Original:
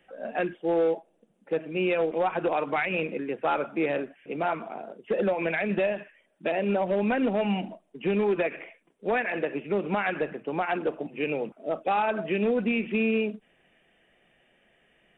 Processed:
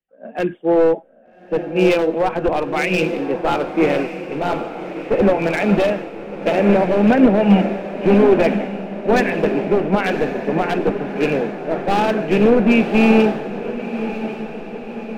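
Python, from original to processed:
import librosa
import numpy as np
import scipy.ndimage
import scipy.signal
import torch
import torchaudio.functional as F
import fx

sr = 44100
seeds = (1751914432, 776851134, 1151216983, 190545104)

y = np.minimum(x, 2.0 * 10.0 ** (-21.5 / 20.0) - x)
y = fx.low_shelf(y, sr, hz=440.0, db=9.0)
y = fx.echo_diffused(y, sr, ms=1184, feedback_pct=72, wet_db=-6.5)
y = fx.band_widen(y, sr, depth_pct=100)
y = F.gain(torch.from_numpy(y), 6.0).numpy()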